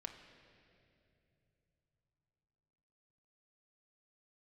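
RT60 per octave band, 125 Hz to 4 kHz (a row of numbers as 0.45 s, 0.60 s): 5.0 s, 4.1 s, 3.4 s, 2.4 s, 2.5 s, 2.2 s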